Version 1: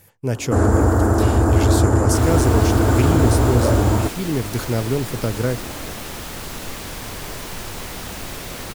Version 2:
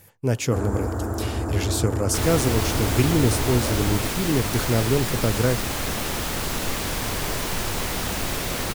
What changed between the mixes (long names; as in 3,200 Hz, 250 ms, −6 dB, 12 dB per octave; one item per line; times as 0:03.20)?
first sound −11.0 dB
second sound +4.5 dB